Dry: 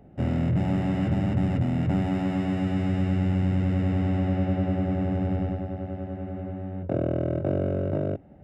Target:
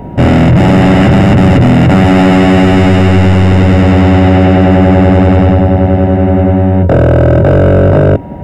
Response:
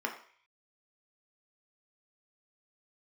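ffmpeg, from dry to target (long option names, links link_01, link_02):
-af "apsyclip=29dB,aeval=exprs='val(0)+0.0251*sin(2*PI*950*n/s)':channel_layout=same,volume=-2dB"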